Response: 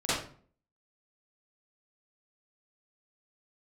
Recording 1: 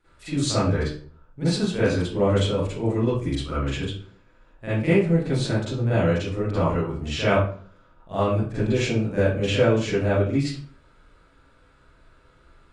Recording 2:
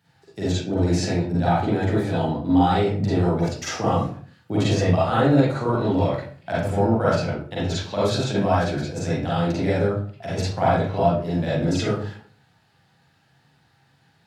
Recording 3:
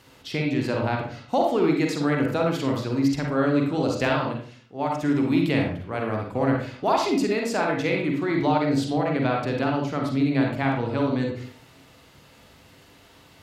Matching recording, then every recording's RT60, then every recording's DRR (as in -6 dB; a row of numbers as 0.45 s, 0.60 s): 1; 0.45 s, 0.45 s, 0.45 s; -13.5 dB, -9.0 dB, 0.0 dB